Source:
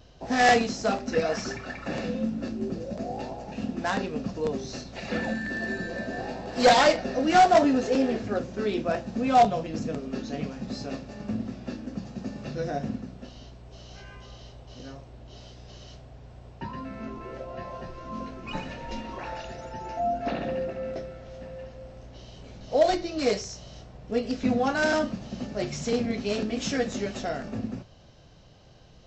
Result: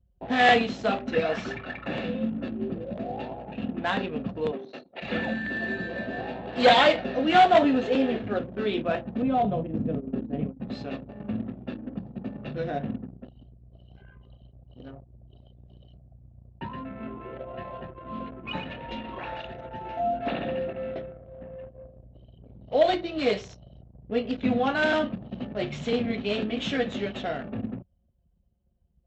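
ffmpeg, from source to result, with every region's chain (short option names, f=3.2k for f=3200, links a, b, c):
-filter_complex "[0:a]asettb=1/sr,asplit=3[a][b][c];[a]atrim=end=4.514[d];[b]atrim=start=4.51:end=5.02,asetpts=PTS-STARTPTS,afade=t=in:d=0.004:c=qsin,afade=t=out:st=0.506:d=0.004:c=qsin,highpass=330,aemphasis=mode=reproduction:type=50fm[e];[c]atrim=start=5.016[f];[d][e]acrossfade=d=0.004:c1=hsin:c2=qsin[g];[g][f]acrossfade=d=0.004:c1=qsin:c2=hsin,asettb=1/sr,asplit=3[h][i][j];[h]atrim=end=9.224[k];[i]atrim=start=9.22:end=10.6,asetpts=PTS-STARTPTS,afade=t=in:d=0.004:c=qsin,afade=t=out:st=1.376:d=0.004:c=qsin,agate=range=-33dB:threshold=-30dB:ratio=3:release=100:detection=peak,tiltshelf=f=840:g=9,acompressor=threshold=-24dB:ratio=2.5:attack=3.2:release=140:knee=1:detection=peak[l];[j]atrim=start=10.596[m];[k][l]acrossfade=d=0.004:c1=hsin:c2=qsin[n];[n][m]acrossfade=d=0.004:c1=qsin:c2=hsin,anlmdn=0.398,highpass=61,highshelf=f=4.3k:t=q:w=3:g=-8"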